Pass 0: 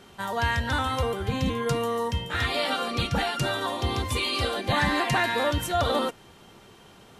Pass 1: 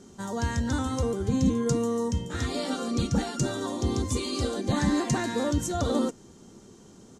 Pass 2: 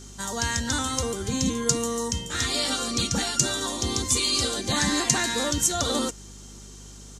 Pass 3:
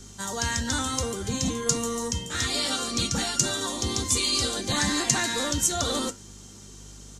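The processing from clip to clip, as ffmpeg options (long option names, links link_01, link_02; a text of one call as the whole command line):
ffmpeg -i in.wav -af "firequalizer=gain_entry='entry(130,0);entry(230,7);entry(670,-7);entry(1200,-8);entry(2600,-14);entry(6600,8);entry(12000,-11)':delay=0.05:min_phase=1" out.wav
ffmpeg -i in.wav -af "aeval=exprs='val(0)+0.00891*(sin(2*PI*50*n/s)+sin(2*PI*2*50*n/s)/2+sin(2*PI*3*50*n/s)/3+sin(2*PI*4*50*n/s)/4+sin(2*PI*5*50*n/s)/5)':channel_layout=same,tiltshelf=frequency=1300:gain=-8.5,volume=5dB" out.wav
ffmpeg -i in.wav -filter_complex "[0:a]flanger=delay=8.9:depth=3.4:regen=-74:speed=0.79:shape=triangular,acrossover=split=180|950[link_01][link_02][link_03];[link_02]volume=31.5dB,asoftclip=hard,volume=-31.5dB[link_04];[link_01][link_04][link_03]amix=inputs=3:normalize=0,volume=3.5dB" out.wav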